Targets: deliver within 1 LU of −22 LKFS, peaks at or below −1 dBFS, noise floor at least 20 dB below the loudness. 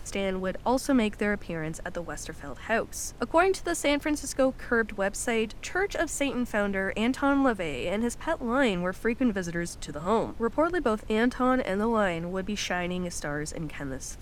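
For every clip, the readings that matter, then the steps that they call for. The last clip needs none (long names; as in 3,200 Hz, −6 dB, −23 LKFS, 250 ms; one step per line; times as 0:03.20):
background noise floor −43 dBFS; target noise floor −48 dBFS; integrated loudness −28.0 LKFS; sample peak −10.5 dBFS; target loudness −22.0 LKFS
→ noise reduction from a noise print 6 dB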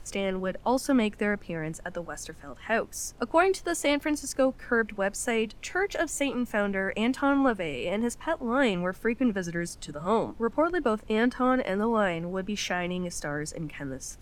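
background noise floor −48 dBFS; integrated loudness −28.0 LKFS; sample peak −10.5 dBFS; target loudness −22.0 LKFS
→ level +6 dB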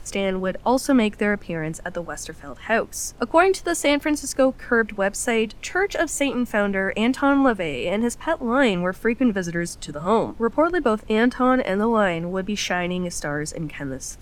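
integrated loudness −22.0 LKFS; sample peak −4.5 dBFS; background noise floor −42 dBFS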